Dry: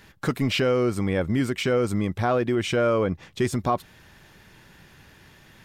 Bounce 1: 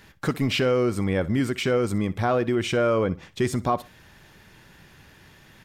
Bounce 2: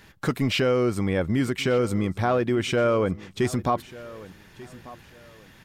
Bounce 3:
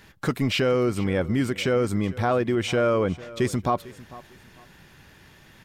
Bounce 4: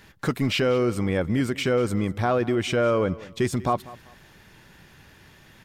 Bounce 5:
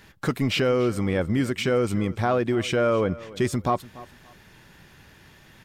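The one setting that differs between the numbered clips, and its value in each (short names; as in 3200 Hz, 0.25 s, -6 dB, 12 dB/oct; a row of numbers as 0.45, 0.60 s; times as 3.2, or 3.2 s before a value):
feedback echo, time: 62, 1191, 449, 194, 290 ms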